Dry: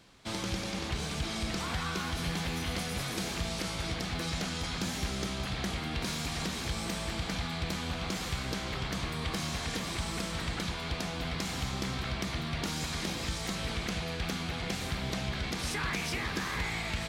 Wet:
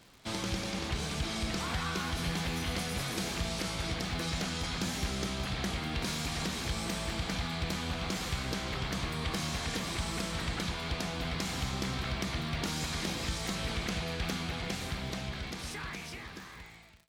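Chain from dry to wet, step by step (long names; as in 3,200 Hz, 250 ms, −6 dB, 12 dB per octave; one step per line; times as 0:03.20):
fade-out on the ending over 2.78 s
surface crackle 76 per second −45 dBFS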